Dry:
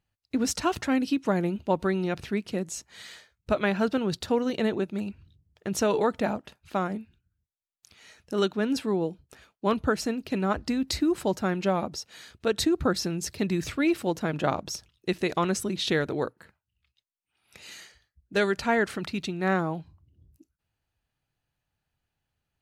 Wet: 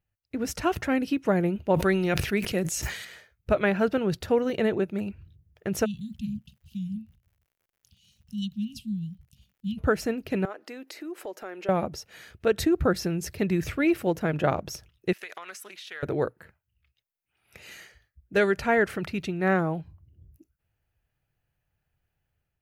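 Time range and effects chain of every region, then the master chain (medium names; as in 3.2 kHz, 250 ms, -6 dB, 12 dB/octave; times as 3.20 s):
1.74–3.05 s: treble shelf 2 kHz +9.5 dB + decay stretcher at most 48 dB/s
5.84–9.77 s: Chebyshev band-stop 220–2900 Hz, order 5 + treble shelf 3.8 kHz -5.5 dB + crackle 110 per s -58 dBFS
10.45–11.69 s: high-pass 330 Hz 24 dB/octave + compression 2.5:1, threshold -40 dBFS
15.13–16.03 s: high-pass 1.2 kHz + compression 12:1, threshold -35 dBFS + loudspeaker Doppler distortion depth 0.13 ms
whole clip: graphic EQ 250/1000/4000/8000 Hz -7/-7/-10/-9 dB; level rider gain up to 6 dB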